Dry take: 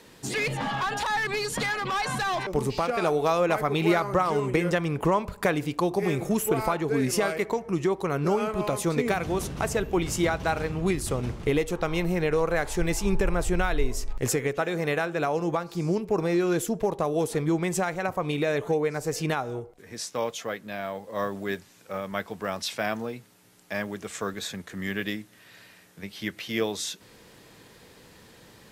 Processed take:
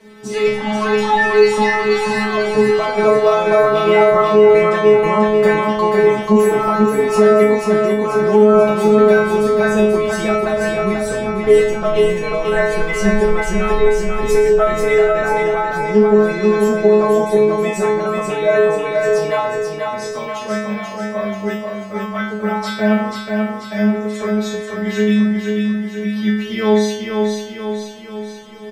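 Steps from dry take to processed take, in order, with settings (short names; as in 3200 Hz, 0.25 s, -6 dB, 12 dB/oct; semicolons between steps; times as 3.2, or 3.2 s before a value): LPF 1900 Hz 6 dB/oct; metallic resonator 210 Hz, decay 0.84 s, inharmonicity 0.002; feedback echo 0.487 s, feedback 54%, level -4 dB; maximiser +29.5 dB; gain -1 dB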